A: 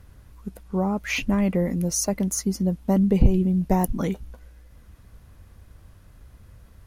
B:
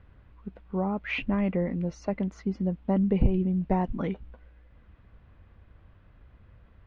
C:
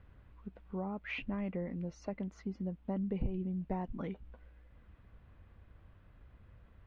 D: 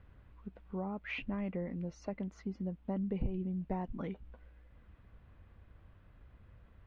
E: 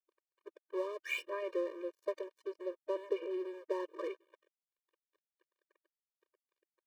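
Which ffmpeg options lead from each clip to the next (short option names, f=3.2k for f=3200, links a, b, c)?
-af "lowpass=f=3.1k:w=0.5412,lowpass=f=3.1k:w=1.3066,lowshelf=f=180:g=-3,volume=-3.5dB"
-af "acompressor=threshold=-42dB:ratio=1.5,volume=-4dB"
-af anull
-af "aeval=exprs='sgn(val(0))*max(abs(val(0))-0.00316,0)':c=same,afftfilt=real='re*eq(mod(floor(b*sr/1024/310),2),1)':imag='im*eq(mod(floor(b*sr/1024/310),2),1)':win_size=1024:overlap=0.75,volume=8dB"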